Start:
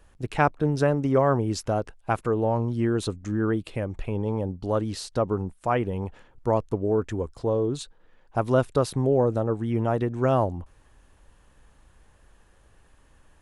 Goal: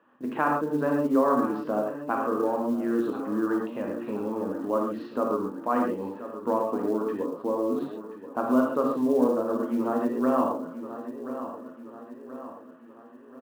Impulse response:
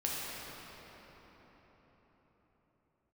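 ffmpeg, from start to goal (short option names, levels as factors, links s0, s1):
-filter_complex "[0:a]highpass=f=230:w=0.5412,highpass=f=230:w=1.3066,equalizer=f=250:t=q:w=4:g=8,equalizer=f=390:t=q:w=4:g=-4,equalizer=f=760:t=q:w=4:g=-4,equalizer=f=1100:t=q:w=4:g=6,equalizer=f=2200:t=q:w=4:g=-10,lowpass=f=2400:w=0.5412,lowpass=f=2400:w=1.3066,aecho=1:1:1030|2060|3090|4120:0.178|0.0836|0.0393|0.0185[s0];[1:a]atrim=start_sample=2205,afade=t=out:st=0.19:d=0.01,atrim=end_sample=8820[s1];[s0][s1]afir=irnorm=-1:irlink=0,asplit=2[s2][s3];[s3]acompressor=threshold=0.0316:ratio=6,volume=1[s4];[s2][s4]amix=inputs=2:normalize=0,acrusher=bits=8:mode=log:mix=0:aa=0.000001,volume=0.531"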